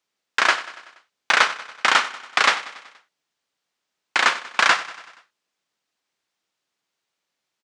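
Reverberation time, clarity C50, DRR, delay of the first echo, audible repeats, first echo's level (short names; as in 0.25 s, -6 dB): none, none, none, 95 ms, 4, -16.5 dB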